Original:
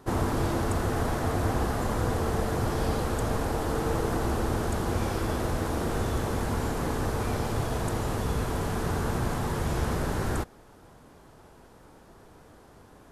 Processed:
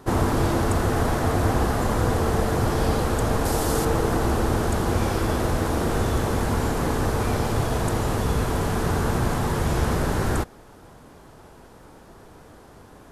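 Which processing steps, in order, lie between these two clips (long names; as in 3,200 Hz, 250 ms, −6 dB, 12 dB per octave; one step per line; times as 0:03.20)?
0:03.45–0:03.85: bass and treble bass 0 dB, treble +9 dB
level +5.5 dB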